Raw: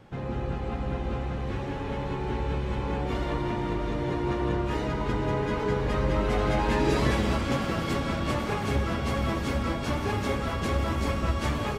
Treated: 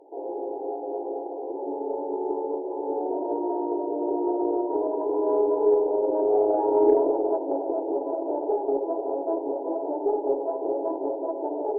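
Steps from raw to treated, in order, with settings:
hollow resonant body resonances 420/660 Hz, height 9 dB, ringing for 45 ms
brick-wall band-pass 270–1,000 Hz
harmonic generator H 4 −36 dB, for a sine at −10 dBFS
level +2 dB

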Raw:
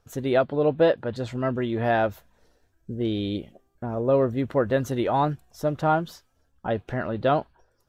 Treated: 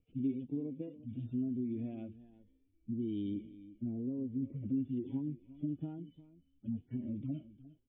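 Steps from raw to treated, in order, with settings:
harmonic-percussive split with one part muted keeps harmonic
downward compressor 6 to 1, threshold −33 dBFS, peak gain reduction 16.5 dB
formant resonators in series i
single-tap delay 354 ms −17 dB
phaser whose notches keep moving one way rising 1.1 Hz
level +6 dB

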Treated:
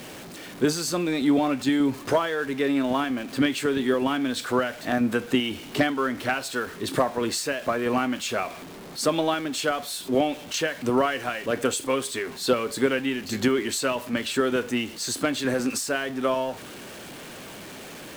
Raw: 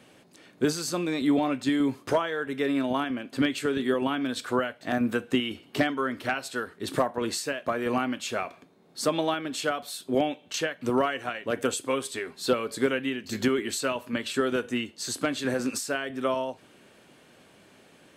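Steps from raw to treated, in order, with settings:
converter with a step at zero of −38.5 dBFS
level +2 dB

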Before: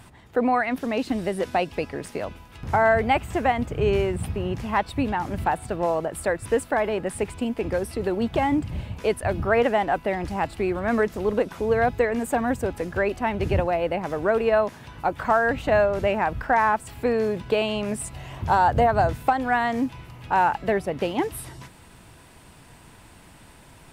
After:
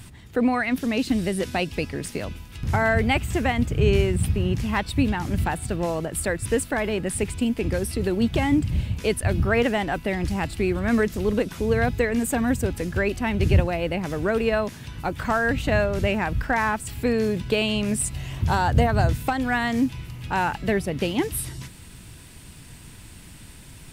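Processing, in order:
parametric band 790 Hz −13.5 dB 2.4 octaves
level +8 dB

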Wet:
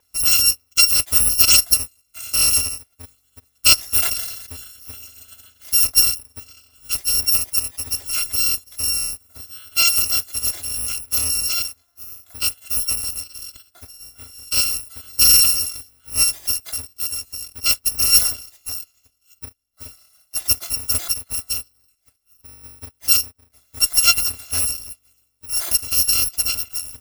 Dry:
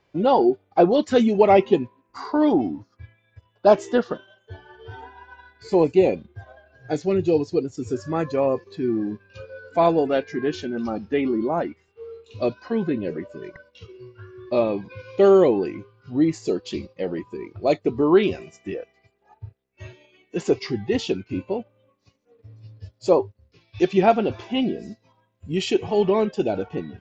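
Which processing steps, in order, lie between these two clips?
samples in bit-reversed order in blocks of 256 samples
0:03.80–0:04.92: level that may fall only so fast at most 49 dB per second
level +1.5 dB

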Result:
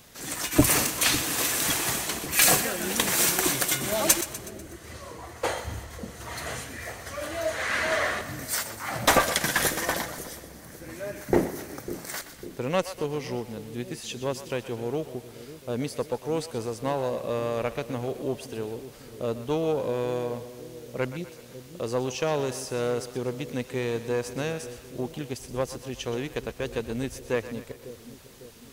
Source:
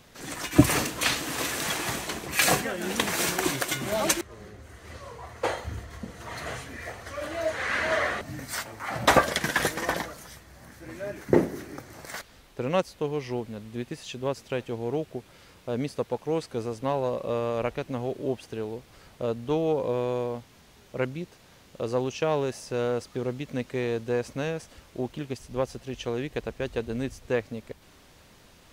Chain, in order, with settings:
one-sided soft clipper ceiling −13 dBFS
high-shelf EQ 6,100 Hz +11 dB
echo with a time of its own for lows and highs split 490 Hz, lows 550 ms, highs 123 ms, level −12.5 dB

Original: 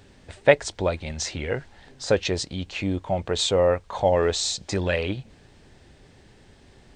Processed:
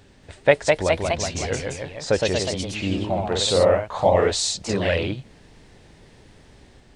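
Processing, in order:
delay with pitch and tempo change per echo 233 ms, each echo +1 semitone, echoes 3

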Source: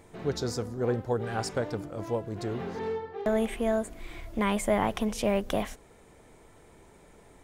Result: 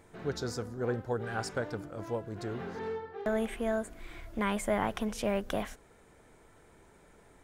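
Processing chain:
parametric band 1,500 Hz +6 dB 0.47 octaves
level −4.5 dB

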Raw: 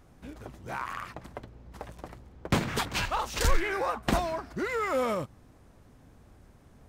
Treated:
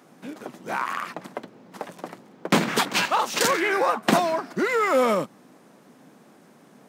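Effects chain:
Butterworth high-pass 170 Hz 36 dB per octave
level +8 dB

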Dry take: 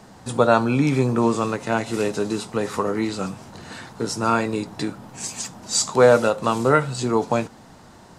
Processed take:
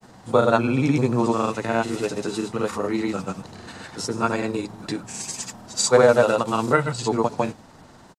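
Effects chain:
hum removal 53.77 Hz, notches 4
granular cloud, pitch spread up and down by 0 semitones

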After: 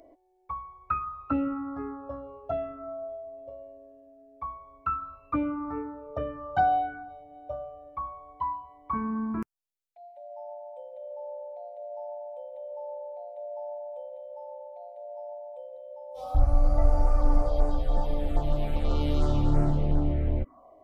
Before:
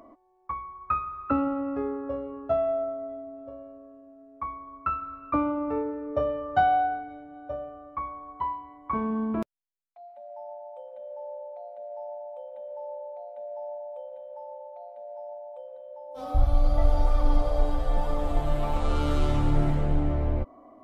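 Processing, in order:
phaser swept by the level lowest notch 190 Hz, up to 3,500 Hz, full sweep at −16.5 dBFS

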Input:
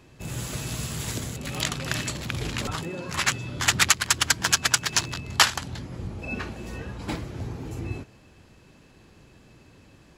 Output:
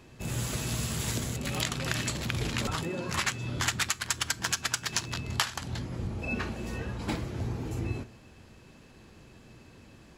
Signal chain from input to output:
downward compressor 6 to 1, threshold −26 dBFS, peak gain reduction 13.5 dB
convolution reverb RT60 0.30 s, pre-delay 4 ms, DRR 15.5 dB

